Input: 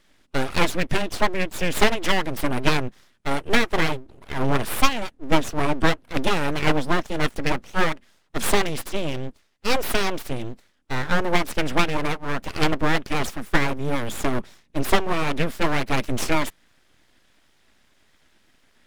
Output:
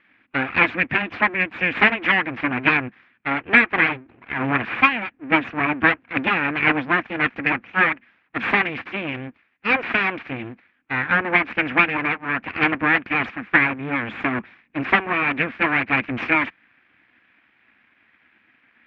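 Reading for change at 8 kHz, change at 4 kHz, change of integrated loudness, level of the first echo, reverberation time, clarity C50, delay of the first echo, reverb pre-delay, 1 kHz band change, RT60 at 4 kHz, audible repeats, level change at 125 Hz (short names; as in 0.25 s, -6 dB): under -30 dB, -3.5 dB, +4.5 dB, none, none, none, none, none, +2.5 dB, none, none, -4.0 dB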